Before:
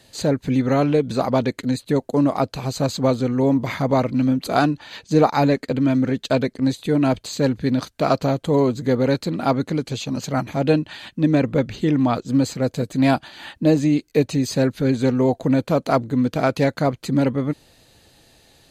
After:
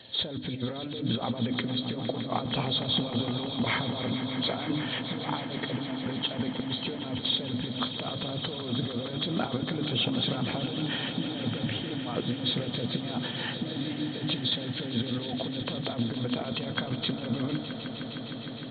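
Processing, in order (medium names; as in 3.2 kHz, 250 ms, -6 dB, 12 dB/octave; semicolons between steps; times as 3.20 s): knee-point frequency compression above 3 kHz 4:1; high-pass 88 Hz; hum notches 50/100/150/200/250/300 Hz; compressor with a negative ratio -28 dBFS, ratio -1; echo with a slow build-up 154 ms, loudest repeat 5, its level -13.5 dB; on a send at -14 dB: reverberation, pre-delay 3 ms; on the sum: trim -5.5 dB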